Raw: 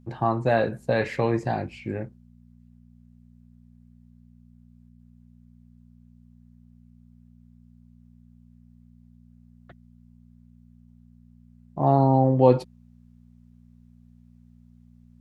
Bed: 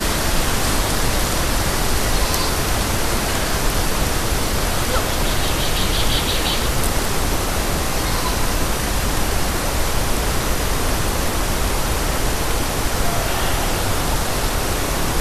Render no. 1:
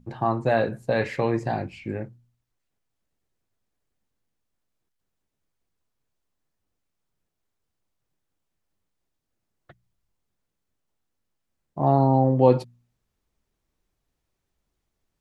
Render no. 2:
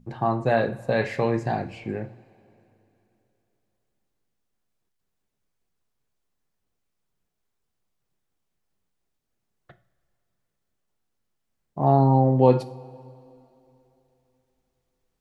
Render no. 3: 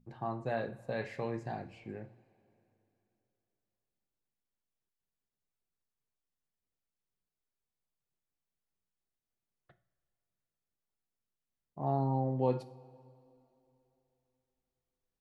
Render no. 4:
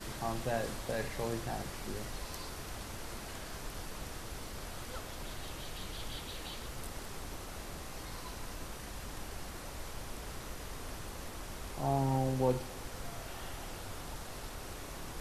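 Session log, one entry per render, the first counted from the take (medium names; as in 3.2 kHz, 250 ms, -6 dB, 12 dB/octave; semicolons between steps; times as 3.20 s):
de-hum 60 Hz, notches 4
two-slope reverb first 0.4 s, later 3.1 s, from -18 dB, DRR 10 dB
trim -13.5 dB
add bed -24 dB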